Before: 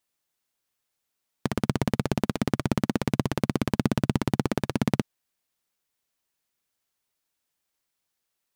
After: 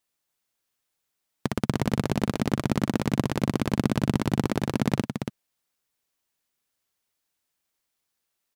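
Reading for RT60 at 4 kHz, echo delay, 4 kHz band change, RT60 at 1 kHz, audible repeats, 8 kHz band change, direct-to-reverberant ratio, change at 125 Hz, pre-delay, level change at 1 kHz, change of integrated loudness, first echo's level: no reverb, 281 ms, +1.0 dB, no reverb, 1, +1.0 dB, no reverb, +0.5 dB, no reverb, +1.0 dB, +0.5 dB, -7.0 dB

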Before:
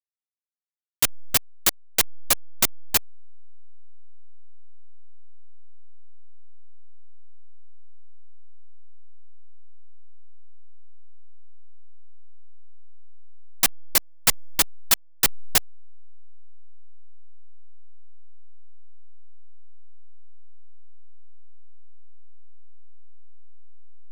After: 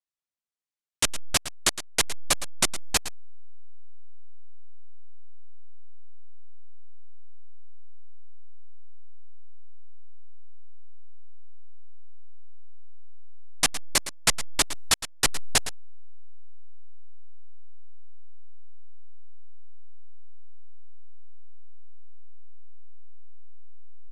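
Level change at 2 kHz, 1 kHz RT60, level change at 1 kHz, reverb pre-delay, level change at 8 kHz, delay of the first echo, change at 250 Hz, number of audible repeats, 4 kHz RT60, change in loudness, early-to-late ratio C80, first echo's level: 0.0 dB, no reverb, 0.0 dB, no reverb, -1.0 dB, 112 ms, 0.0 dB, 1, no reverb, -3.5 dB, no reverb, -13.5 dB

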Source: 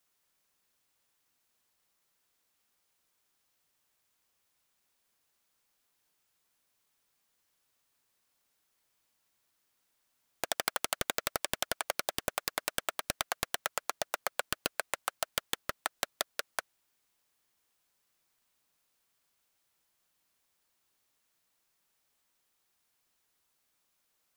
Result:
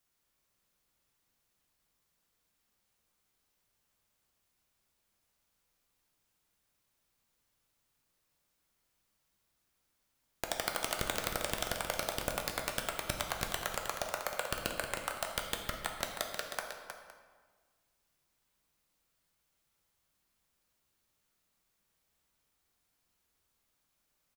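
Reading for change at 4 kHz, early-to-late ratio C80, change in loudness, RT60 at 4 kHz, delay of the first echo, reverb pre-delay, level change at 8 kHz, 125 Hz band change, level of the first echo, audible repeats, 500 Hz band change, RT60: -2.0 dB, 4.0 dB, -1.5 dB, 1.0 s, 313 ms, 7 ms, -2.5 dB, +6.0 dB, -8.5 dB, 2, +0.5 dB, 1.5 s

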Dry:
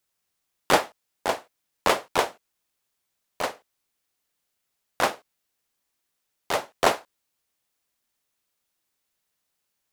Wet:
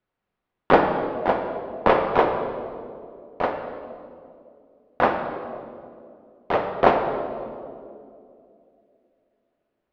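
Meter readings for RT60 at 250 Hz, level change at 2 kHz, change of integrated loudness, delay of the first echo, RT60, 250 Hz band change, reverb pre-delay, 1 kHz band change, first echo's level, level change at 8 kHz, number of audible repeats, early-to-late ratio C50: 3.3 s, +1.0 dB, +3.5 dB, no echo, 2.5 s, +9.0 dB, 4 ms, +5.5 dB, no echo, under -25 dB, no echo, 5.5 dB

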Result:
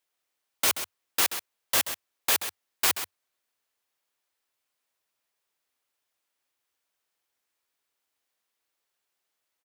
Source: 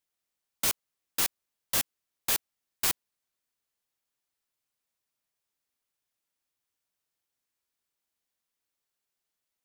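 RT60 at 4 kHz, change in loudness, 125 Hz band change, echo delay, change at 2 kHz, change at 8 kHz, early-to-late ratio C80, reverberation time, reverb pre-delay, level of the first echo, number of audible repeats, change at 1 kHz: no reverb, +3.5 dB, -2.5 dB, 131 ms, +6.5 dB, +3.0 dB, no reverb, no reverb, no reverb, -10.5 dB, 1, +7.0 dB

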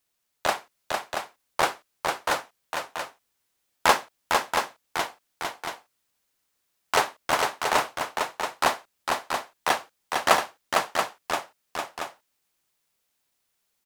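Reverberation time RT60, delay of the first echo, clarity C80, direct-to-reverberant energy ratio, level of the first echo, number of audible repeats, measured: no reverb, 454 ms, no reverb, no reverb, -4.0 dB, 2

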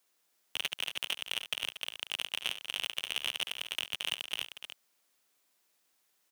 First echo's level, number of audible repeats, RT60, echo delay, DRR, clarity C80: -15.5 dB, 3, no reverb, 71 ms, no reverb, no reverb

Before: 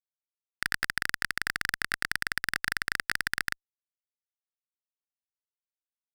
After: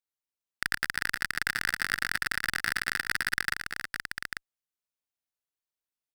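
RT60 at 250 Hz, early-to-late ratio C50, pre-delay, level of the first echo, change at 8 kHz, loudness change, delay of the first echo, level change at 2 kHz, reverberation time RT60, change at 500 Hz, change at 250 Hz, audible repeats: no reverb, no reverb, no reverb, -16.0 dB, +1.5 dB, +0.5 dB, 114 ms, +1.0 dB, no reverb, +1.5 dB, +1.0 dB, 3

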